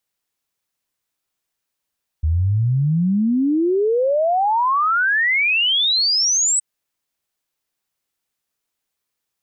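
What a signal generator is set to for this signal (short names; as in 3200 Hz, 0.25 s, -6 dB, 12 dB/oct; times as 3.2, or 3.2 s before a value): log sweep 75 Hz -> 8100 Hz 4.37 s -14.5 dBFS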